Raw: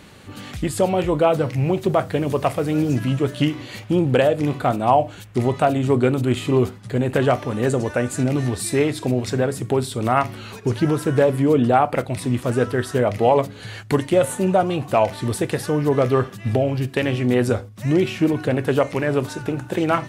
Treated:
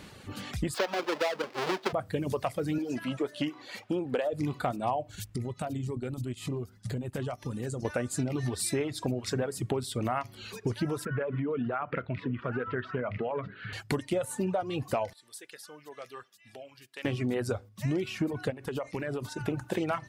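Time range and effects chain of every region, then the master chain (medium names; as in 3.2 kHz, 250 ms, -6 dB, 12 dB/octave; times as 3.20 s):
0.74–1.93 s: square wave that keeps the level + high-pass 190 Hz 24 dB/octave + three-band isolator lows -14 dB, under 320 Hz, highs -15 dB, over 5.1 kHz
2.78–4.33 s: high-pass 280 Hz + treble shelf 3.5 kHz -6 dB
5.09–7.85 s: tone controls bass +8 dB, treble +8 dB + transient shaper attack 0 dB, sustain -9 dB + compression 5:1, threshold -28 dBFS
11.05–13.73 s: compression 5:1, threshold -20 dBFS + cabinet simulation 110–2700 Hz, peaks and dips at 320 Hz -5 dB, 540 Hz -3 dB, 790 Hz -8 dB, 1.4 kHz +7 dB + delay 748 ms -18.5 dB
15.13–17.05 s: low-pass 2.1 kHz 6 dB/octave + differentiator
18.50–19.40 s: expander -28 dBFS + compression 8:1, threshold -25 dBFS
whole clip: reverb removal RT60 0.9 s; peaking EQ 5 kHz +3 dB 0.39 oct; compression, threshold -24 dBFS; trim -3 dB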